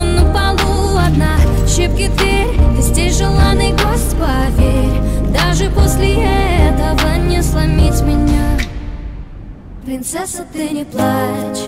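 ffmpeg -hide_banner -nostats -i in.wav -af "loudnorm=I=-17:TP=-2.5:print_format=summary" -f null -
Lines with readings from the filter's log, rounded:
Input Integrated:    -14.7 LUFS
Input True Peak:      -2.2 dBTP
Input LRA:             7.2 LU
Input Threshold:     -25.3 LUFS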